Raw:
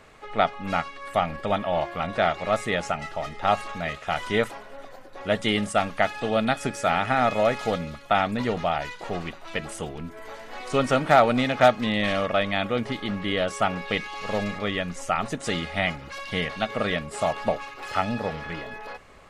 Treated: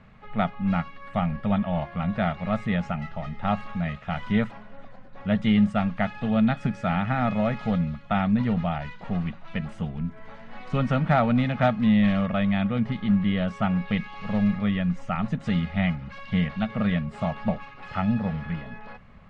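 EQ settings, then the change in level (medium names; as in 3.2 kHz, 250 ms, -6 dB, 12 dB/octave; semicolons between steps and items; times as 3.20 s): low-pass 3 kHz 12 dB/octave; resonant low shelf 260 Hz +8.5 dB, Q 3; -4.5 dB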